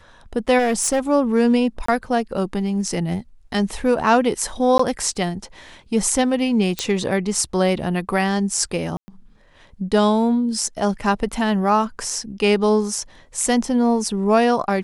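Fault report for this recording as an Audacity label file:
0.580000	1.000000	clipped -14.5 dBFS
1.860000	1.880000	gap 24 ms
4.780000	4.790000	gap 14 ms
6.790000	6.790000	pop -7 dBFS
8.970000	9.080000	gap 0.11 s

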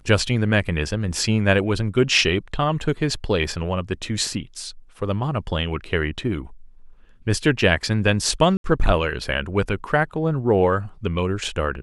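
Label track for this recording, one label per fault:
8.570000	8.640000	gap 72 ms

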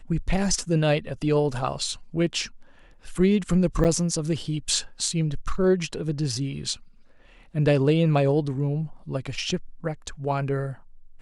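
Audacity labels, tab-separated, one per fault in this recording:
3.840000	3.850000	gap 9 ms

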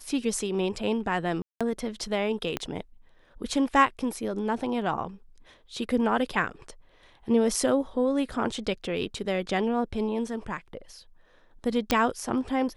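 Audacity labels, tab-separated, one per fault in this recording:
1.420000	1.610000	gap 0.186 s
2.570000	2.570000	pop -14 dBFS
11.910000	11.910000	pop -7 dBFS

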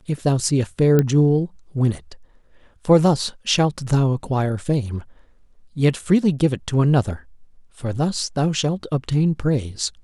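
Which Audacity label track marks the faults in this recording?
0.990000	0.990000	pop -6 dBFS

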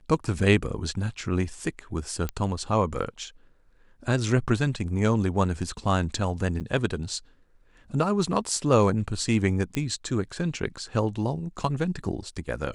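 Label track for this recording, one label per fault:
2.290000	2.290000	pop -15 dBFS
6.600000	6.610000	gap 8.5 ms
9.750000	9.750000	pop -14 dBFS

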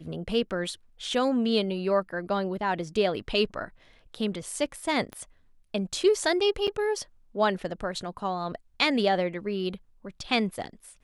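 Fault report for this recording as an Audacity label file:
5.130000	5.130000	pop -24 dBFS
6.670000	6.680000	gap 7 ms

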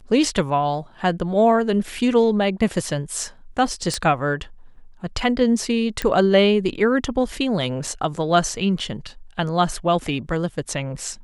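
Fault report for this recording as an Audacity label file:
3.940000	3.940000	pop -11 dBFS
6.020000	6.020000	pop -9 dBFS
7.870000	7.870000	gap 3 ms

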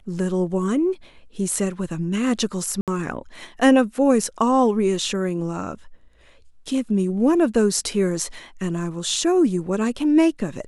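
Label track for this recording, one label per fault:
2.810000	2.880000	gap 67 ms

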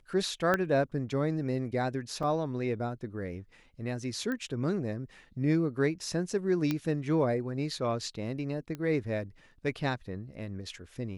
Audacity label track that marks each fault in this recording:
0.540000	0.540000	pop -14 dBFS
2.230000	2.230000	gap 3.7 ms
4.320000	4.320000	pop -23 dBFS
6.710000	6.710000	pop -16 dBFS
8.750000	8.750000	pop -25 dBFS

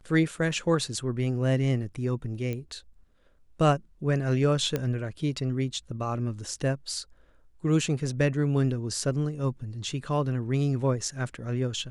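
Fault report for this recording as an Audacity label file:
2.530000	2.530000	pop -21 dBFS
4.760000	4.760000	pop -14 dBFS

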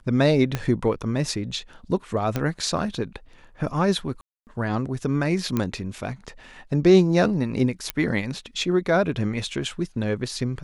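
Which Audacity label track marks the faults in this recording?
0.550000	0.550000	pop -11 dBFS
2.360000	2.360000	pop -11 dBFS
4.210000	4.470000	gap 0.259 s
5.570000	5.570000	pop -11 dBFS
7.900000	7.900000	pop -8 dBFS

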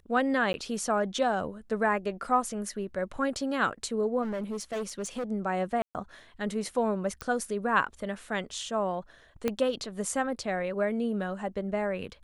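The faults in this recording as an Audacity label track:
0.530000	0.540000	gap
4.220000	5.240000	clipped -29.5 dBFS
5.820000	5.950000	gap 0.128 s
7.210000	7.210000	pop -19 dBFS
9.480000	9.480000	pop -14 dBFS

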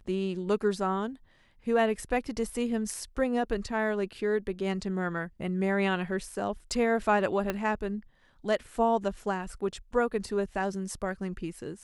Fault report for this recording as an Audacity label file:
7.500000	7.500000	pop -15 dBFS

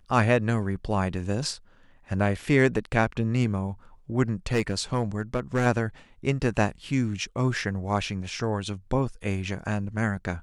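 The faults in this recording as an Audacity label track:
4.520000	5.670000	clipped -17.5 dBFS

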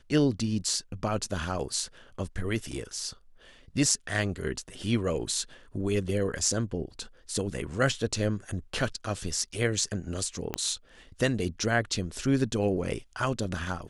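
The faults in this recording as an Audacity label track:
10.540000	10.540000	pop -14 dBFS

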